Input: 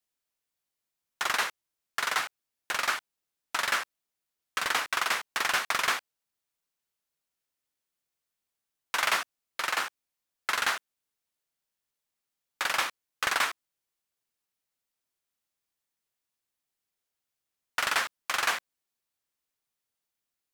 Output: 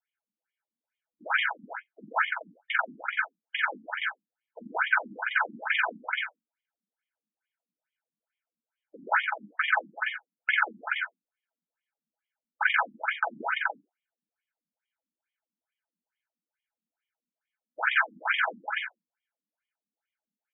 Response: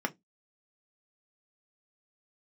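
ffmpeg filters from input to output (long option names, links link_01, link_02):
-filter_complex "[0:a]asettb=1/sr,asplit=3[link_01][link_02][link_03];[link_01]atrim=end=9.744[link_04];[link_02]atrim=start=9.74:end=10.67,asetpts=PTS-STARTPTS,afade=type=in:duration=0.004:curve=qsin,afade=type=out:start_time=0.926:duration=0.004:curve=qsin,highshelf=frequency=3700:width_type=q:width=1.5:gain=-8.5[link_05];[link_03]atrim=start=10.666[link_06];[link_04][link_05]acrossfade=duration=0.004:curve1=hsin:curve2=qsin[link_07];[link_07][link_06]acrossfade=duration=0.004:curve1=qsin:curve2=hsin,aecho=1:1:294:0.473[link_08];[1:a]atrim=start_sample=2205[link_09];[link_08][link_09]afir=irnorm=-1:irlink=0,acrossover=split=840|1200[link_10][link_11][link_12];[link_11]acrusher=bits=5:mix=0:aa=0.5[link_13];[link_10][link_13][link_12]amix=inputs=3:normalize=0,aecho=1:1:1.3:0.71,asoftclip=type=hard:threshold=-13.5dB,afftfilt=real='re*between(b*sr/1024,230*pow(2600/230,0.5+0.5*sin(2*PI*2.3*pts/sr))/1.41,230*pow(2600/230,0.5+0.5*sin(2*PI*2.3*pts/sr))*1.41)':imag='im*between(b*sr/1024,230*pow(2600/230,0.5+0.5*sin(2*PI*2.3*pts/sr))/1.41,230*pow(2600/230,0.5+0.5*sin(2*PI*2.3*pts/sr))*1.41)':win_size=1024:overlap=0.75"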